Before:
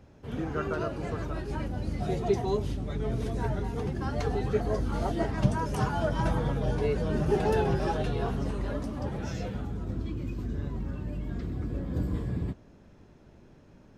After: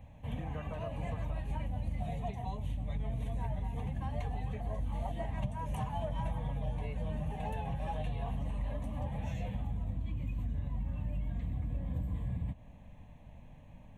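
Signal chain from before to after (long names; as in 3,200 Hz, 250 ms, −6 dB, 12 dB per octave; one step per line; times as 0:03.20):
low-shelf EQ 70 Hz +6 dB
downward compressor, threshold −33 dBFS, peak gain reduction 16 dB
phaser with its sweep stopped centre 1,400 Hz, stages 6
level +2 dB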